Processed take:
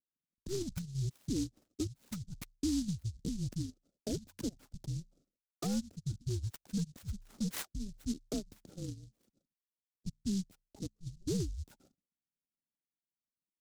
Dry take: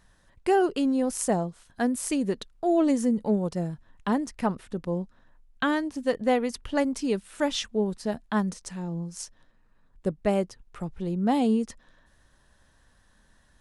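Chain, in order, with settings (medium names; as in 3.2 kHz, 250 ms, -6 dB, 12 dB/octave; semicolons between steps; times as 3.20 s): resonances exaggerated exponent 2; gate -54 dBFS, range -23 dB; level-controlled noise filter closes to 420 Hz, open at -22.5 dBFS; peaking EQ 640 Hz +11 dB 0.6 oct; hum notches 60/120/180/240/300/360/420 Hz; compression 5:1, threshold -30 dBFS, peak gain reduction 16.5 dB; static phaser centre 580 Hz, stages 4; peak limiter -30.5 dBFS, peak gain reduction 10 dB; harmony voices -7 st -5 dB; mistuned SSB -390 Hz 530–3200 Hz; delay time shaken by noise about 5.4 kHz, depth 0.13 ms; trim +4.5 dB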